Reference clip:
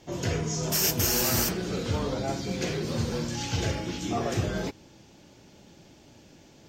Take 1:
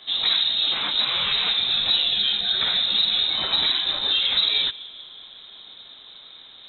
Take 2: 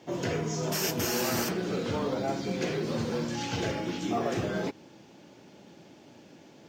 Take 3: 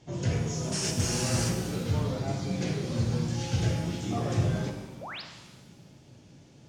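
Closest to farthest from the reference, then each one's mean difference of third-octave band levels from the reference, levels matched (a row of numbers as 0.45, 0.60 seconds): 2, 3, 1; 3.0, 4.5, 17.0 decibels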